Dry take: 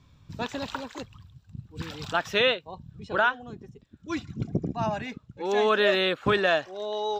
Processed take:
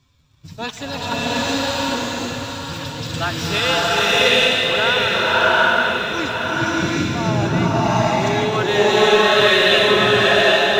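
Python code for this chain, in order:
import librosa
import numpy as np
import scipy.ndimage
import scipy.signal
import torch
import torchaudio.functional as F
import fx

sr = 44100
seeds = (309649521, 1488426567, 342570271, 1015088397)

p1 = fx.reverse_delay_fb(x, sr, ms=330, feedback_pct=60, wet_db=-7.0)
p2 = fx.high_shelf(p1, sr, hz=2400.0, db=9.0)
p3 = fx.rider(p2, sr, range_db=4, speed_s=0.5)
p4 = p2 + (p3 * librosa.db_to_amplitude(-2.0))
p5 = fx.stretch_vocoder(p4, sr, factor=1.5)
p6 = fx.leveller(p5, sr, passes=1)
p7 = fx.rev_bloom(p6, sr, seeds[0], attack_ms=770, drr_db=-8.5)
y = p7 * librosa.db_to_amplitude(-8.5)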